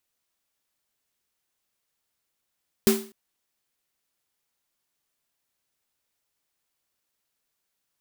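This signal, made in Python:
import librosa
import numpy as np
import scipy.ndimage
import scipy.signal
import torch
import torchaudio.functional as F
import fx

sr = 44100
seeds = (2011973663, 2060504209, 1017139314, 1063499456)

y = fx.drum_snare(sr, seeds[0], length_s=0.25, hz=220.0, second_hz=390.0, noise_db=-6, noise_from_hz=540.0, decay_s=0.37, noise_decay_s=0.38)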